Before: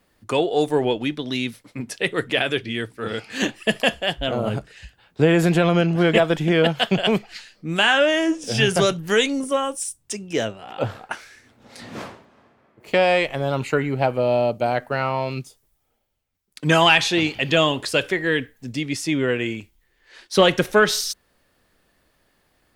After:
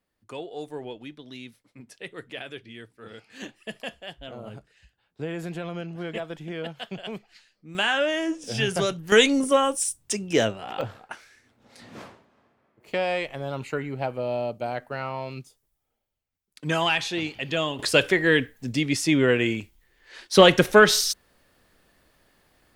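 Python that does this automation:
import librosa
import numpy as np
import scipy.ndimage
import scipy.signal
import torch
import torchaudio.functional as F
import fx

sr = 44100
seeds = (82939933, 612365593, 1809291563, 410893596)

y = fx.gain(x, sr, db=fx.steps((0.0, -16.0), (7.75, -6.5), (9.12, 2.0), (10.81, -8.5), (17.79, 1.5)))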